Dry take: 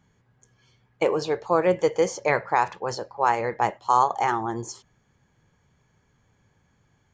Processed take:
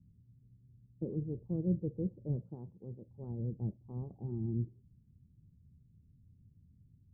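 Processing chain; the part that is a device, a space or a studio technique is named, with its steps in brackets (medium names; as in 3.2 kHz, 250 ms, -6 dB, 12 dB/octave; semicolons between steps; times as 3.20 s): 2.36–3.06 s: high-pass 150 Hz -> 360 Hz 6 dB/octave; the neighbour's flat through the wall (low-pass 240 Hz 24 dB/octave; peaking EQ 80 Hz +6 dB 0.87 oct); trim +1 dB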